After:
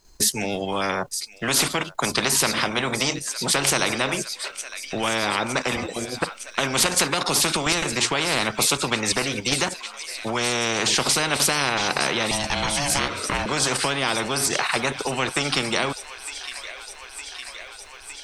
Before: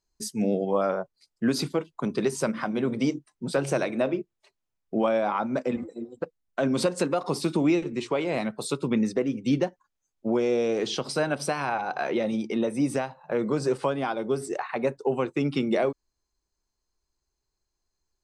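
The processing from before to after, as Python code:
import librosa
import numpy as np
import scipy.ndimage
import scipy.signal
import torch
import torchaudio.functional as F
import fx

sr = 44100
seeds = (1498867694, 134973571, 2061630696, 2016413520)

p1 = fx.level_steps(x, sr, step_db=20)
p2 = x + (p1 * 10.0 ** (2.5 / 20.0))
p3 = fx.ring_mod(p2, sr, carrier_hz=430.0, at=(12.31, 13.46))
p4 = fx.echo_wet_highpass(p3, sr, ms=910, feedback_pct=77, hz=2600.0, wet_db=-17.5)
p5 = fx.spectral_comp(p4, sr, ratio=4.0)
y = p5 * 10.0 ** (4.0 / 20.0)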